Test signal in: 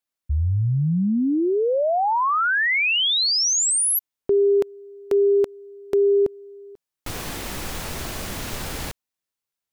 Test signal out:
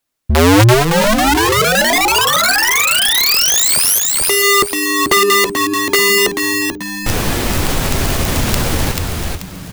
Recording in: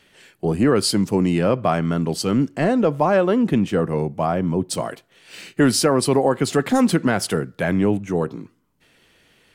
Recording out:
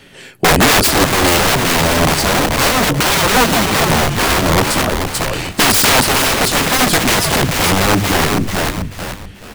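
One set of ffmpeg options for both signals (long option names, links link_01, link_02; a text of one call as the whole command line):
ffmpeg -i in.wav -filter_complex "[0:a]lowshelf=frequency=470:gain=5.5,acrossover=split=510|5000[link_01][link_02][link_03];[link_01]asoftclip=type=hard:threshold=-18dB[link_04];[link_04][link_02][link_03]amix=inputs=3:normalize=0,flanger=delay=7.3:depth=5.6:regen=-49:speed=0.25:shape=sinusoidal,aeval=exprs='(mod(10.6*val(0)+1,2)-1)/10.6':channel_layout=same,asplit=2[link_05][link_06];[link_06]asplit=4[link_07][link_08][link_09][link_10];[link_07]adelay=436,afreqshift=-100,volume=-5.5dB[link_11];[link_08]adelay=872,afreqshift=-200,volume=-15.4dB[link_12];[link_09]adelay=1308,afreqshift=-300,volume=-25.3dB[link_13];[link_10]adelay=1744,afreqshift=-400,volume=-35.2dB[link_14];[link_11][link_12][link_13][link_14]amix=inputs=4:normalize=0[link_15];[link_05][link_15]amix=inputs=2:normalize=0,alimiter=level_in=20.5dB:limit=-1dB:release=50:level=0:latency=1,volume=-4.5dB" out.wav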